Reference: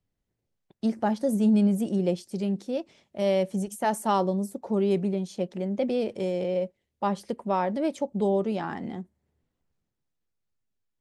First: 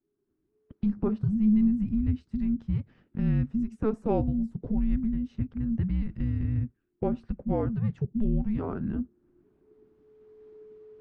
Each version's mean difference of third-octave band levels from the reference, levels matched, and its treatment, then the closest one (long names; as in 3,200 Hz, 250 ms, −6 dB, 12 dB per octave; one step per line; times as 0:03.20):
11.0 dB: camcorder AGC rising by 16 dB per second
low-pass filter 1,500 Hz 12 dB per octave
frequency shifter −430 Hz
level −1 dB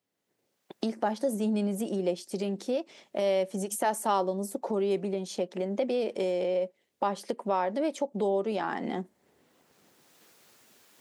4.0 dB: camcorder AGC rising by 18 dB per second
high-pass filter 310 Hz 12 dB per octave
in parallel at +3 dB: downward compressor, threshold −33 dBFS, peak gain reduction 13 dB
on the sum: level −4.5 dB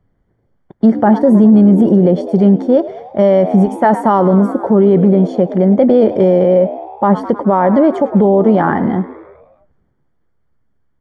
6.0 dB: Savitzky-Golay smoothing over 41 samples
echo with shifted repeats 104 ms, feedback 61%, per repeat +70 Hz, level −18 dB
boost into a limiter +21 dB
level −1 dB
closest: second